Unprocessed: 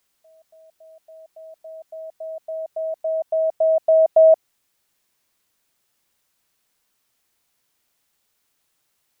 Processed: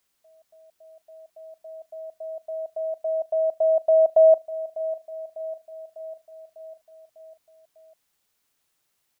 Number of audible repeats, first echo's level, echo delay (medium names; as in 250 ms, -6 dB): 5, -16.0 dB, 599 ms